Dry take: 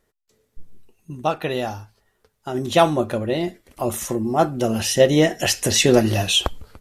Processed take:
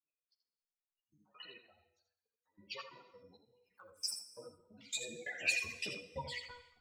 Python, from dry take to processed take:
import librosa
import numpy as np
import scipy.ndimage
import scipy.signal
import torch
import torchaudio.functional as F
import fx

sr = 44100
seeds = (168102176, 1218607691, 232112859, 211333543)

y = fx.spec_gate(x, sr, threshold_db=-15, keep='strong')
y = fx.dynamic_eq(y, sr, hz=500.0, q=1.2, threshold_db=-30.0, ratio=4.0, max_db=-8)
y = fx.filter_sweep_bandpass(y, sr, from_hz=5700.0, to_hz=870.0, start_s=4.42, end_s=6.18, q=2.4)
y = fx.granulator(y, sr, seeds[0], grain_ms=100.0, per_s=20.0, spray_ms=29.0, spread_st=7)
y = fx.phaser_stages(y, sr, stages=12, low_hz=250.0, high_hz=1400.0, hz=2.8, feedback_pct=25)
y = fx.comb_fb(y, sr, f0_hz=490.0, decay_s=0.59, harmonics='all', damping=0.0, mix_pct=80)
y = fx.step_gate(y, sr, bpm=134, pattern='xxx.x..xx.x.xx.x', floor_db=-24.0, edge_ms=4.5)
y = y + 10.0 ** (-8.0 / 20.0) * np.pad(y, (int(82 * sr / 1000.0), 0))[:len(y)]
y = fx.rev_gated(y, sr, seeds[1], gate_ms=410, shape='falling', drr_db=12.0)
y = fx.ensemble(y, sr)
y = F.gain(torch.from_numpy(y), 16.5).numpy()